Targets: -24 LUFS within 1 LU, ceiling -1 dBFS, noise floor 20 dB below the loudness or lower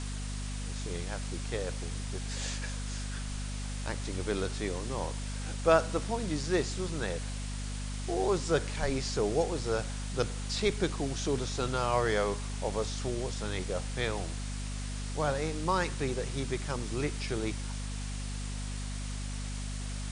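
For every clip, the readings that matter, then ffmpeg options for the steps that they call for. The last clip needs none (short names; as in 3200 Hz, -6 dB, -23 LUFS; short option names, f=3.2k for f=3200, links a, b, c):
hum 50 Hz; harmonics up to 250 Hz; hum level -34 dBFS; noise floor -37 dBFS; noise floor target -54 dBFS; loudness -33.5 LUFS; peak -10.5 dBFS; loudness target -24.0 LUFS
-> -af "bandreject=f=50:t=h:w=4,bandreject=f=100:t=h:w=4,bandreject=f=150:t=h:w=4,bandreject=f=200:t=h:w=4,bandreject=f=250:t=h:w=4"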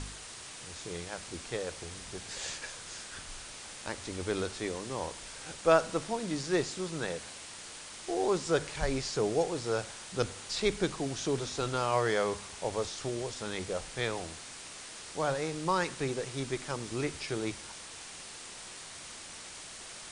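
hum none; noise floor -46 dBFS; noise floor target -55 dBFS
-> -af "afftdn=nr=9:nf=-46"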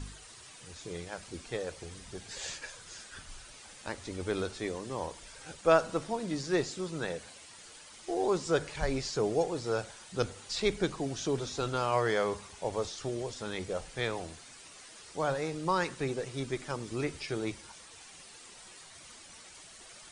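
noise floor -52 dBFS; noise floor target -54 dBFS
-> -af "afftdn=nr=6:nf=-52"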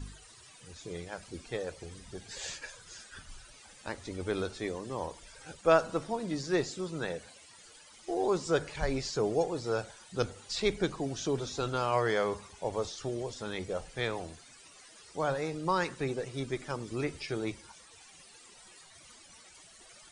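noise floor -56 dBFS; loudness -34.0 LUFS; peak -11.5 dBFS; loudness target -24.0 LUFS
-> -af "volume=10dB"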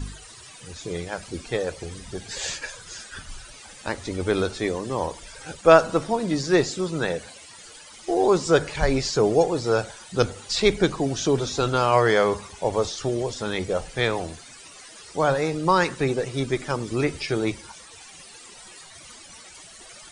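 loudness -24.0 LUFS; peak -1.5 dBFS; noise floor -46 dBFS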